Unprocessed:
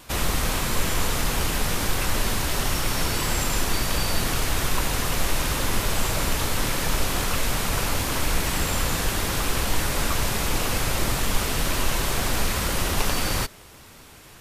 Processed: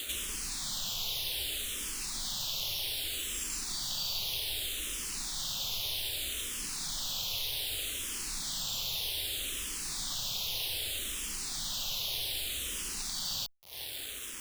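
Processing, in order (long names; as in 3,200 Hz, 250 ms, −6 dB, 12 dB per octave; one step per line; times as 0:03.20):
high shelf with overshoot 2,300 Hz +13.5 dB, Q 3
downward compressor 4 to 1, threshold −36 dBFS, peak gain reduction 22 dB
bit reduction 6 bits
frequency shifter mixed with the dry sound −0.64 Hz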